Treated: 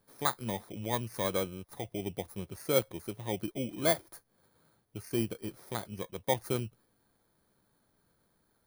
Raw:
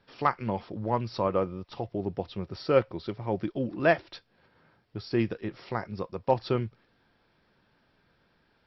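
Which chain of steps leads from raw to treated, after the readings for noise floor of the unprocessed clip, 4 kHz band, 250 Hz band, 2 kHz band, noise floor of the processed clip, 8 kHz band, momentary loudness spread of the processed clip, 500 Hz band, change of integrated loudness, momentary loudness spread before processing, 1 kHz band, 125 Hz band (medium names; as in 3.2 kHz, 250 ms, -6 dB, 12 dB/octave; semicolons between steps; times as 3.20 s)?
-69 dBFS, +3.0 dB, -5.0 dB, -6.0 dB, -74 dBFS, no reading, 12 LU, -5.5 dB, -4.0 dB, 12 LU, -7.0 dB, -5.0 dB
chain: bit-reversed sample order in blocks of 16 samples; trim -5 dB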